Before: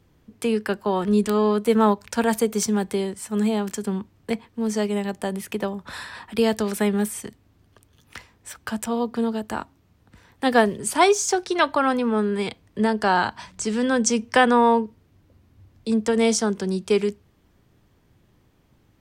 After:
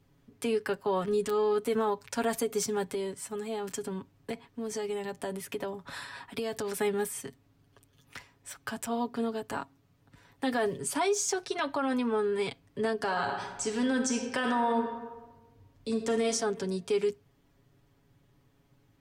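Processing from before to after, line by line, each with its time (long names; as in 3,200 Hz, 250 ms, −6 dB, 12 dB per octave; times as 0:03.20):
0:02.85–0:06.79: downward compressor 5 to 1, threshold −23 dBFS
0:12.95–0:16.23: thrown reverb, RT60 1.2 s, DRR 5.5 dB
whole clip: comb filter 7.2 ms, depth 72%; brickwall limiter −13.5 dBFS; level −7 dB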